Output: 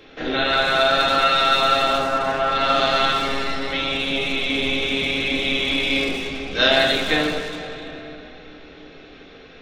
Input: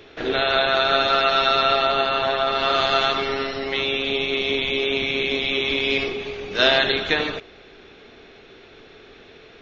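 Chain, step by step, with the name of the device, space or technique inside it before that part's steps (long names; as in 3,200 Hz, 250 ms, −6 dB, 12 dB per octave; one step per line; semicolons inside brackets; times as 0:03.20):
0:01.98–0:02.50: low-pass filter 1,500 Hz → 3,100 Hz 24 dB per octave
rectangular room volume 640 cubic metres, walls furnished, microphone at 2.1 metres
saturated reverb return (on a send at −4 dB: convolution reverb RT60 3.0 s, pre-delay 107 ms + soft clipping −21 dBFS, distortion −8 dB)
on the sum: level −2 dB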